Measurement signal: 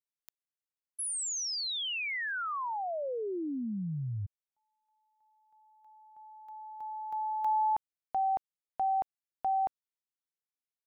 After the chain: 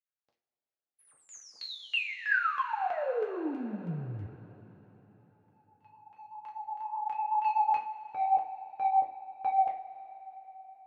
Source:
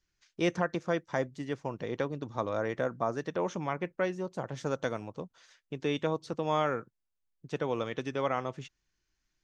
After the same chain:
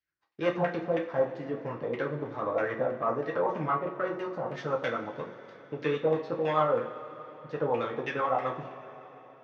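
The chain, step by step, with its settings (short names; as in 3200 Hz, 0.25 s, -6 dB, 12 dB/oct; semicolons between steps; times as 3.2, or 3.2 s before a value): bell 4600 Hz +9.5 dB 1.1 oct; sample leveller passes 2; flange 2 Hz, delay 2.7 ms, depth 7.3 ms, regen +66%; rotary speaker horn 8 Hz; LFO low-pass saw down 3.1 Hz 710–2300 Hz; HPF 62 Hz; tone controls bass -5 dB, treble +5 dB; two-slope reverb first 0.29 s, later 4 s, from -19 dB, DRR -0.5 dB; gain -1.5 dB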